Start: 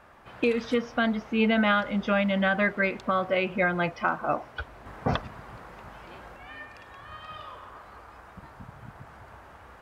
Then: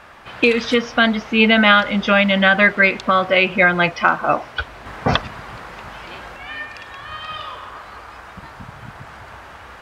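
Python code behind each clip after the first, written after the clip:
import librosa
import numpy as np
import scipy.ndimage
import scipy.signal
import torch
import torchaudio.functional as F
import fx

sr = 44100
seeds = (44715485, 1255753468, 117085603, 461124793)

y = fx.peak_eq(x, sr, hz=3700.0, db=8.5, octaves=2.7)
y = F.gain(torch.from_numpy(y), 7.5).numpy()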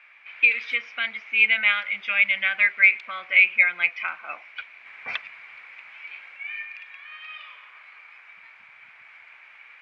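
y = fx.bandpass_q(x, sr, hz=2300.0, q=11.0)
y = F.gain(torch.from_numpy(y), 6.0).numpy()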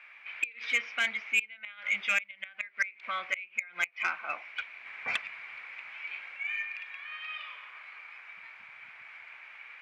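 y = fx.gate_flip(x, sr, shuts_db=-12.0, range_db=-27)
y = 10.0 ** (-18.5 / 20.0) * np.tanh(y / 10.0 ** (-18.5 / 20.0))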